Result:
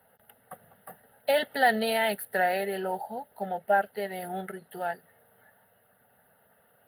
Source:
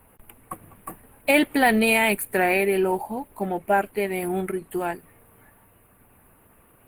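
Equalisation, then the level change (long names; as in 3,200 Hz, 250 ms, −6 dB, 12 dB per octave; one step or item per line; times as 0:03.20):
high-pass filter 210 Hz 12 dB per octave
high-shelf EQ 10,000 Hz −5 dB
phaser with its sweep stopped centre 1,600 Hz, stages 8
−1.5 dB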